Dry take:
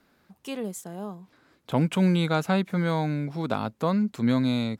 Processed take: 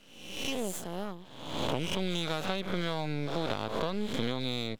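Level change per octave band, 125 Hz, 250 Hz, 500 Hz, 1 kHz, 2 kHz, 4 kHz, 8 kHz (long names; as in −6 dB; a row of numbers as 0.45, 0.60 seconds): −10.5, −10.5, −4.0, −5.5, −3.5, +2.5, +1.5 decibels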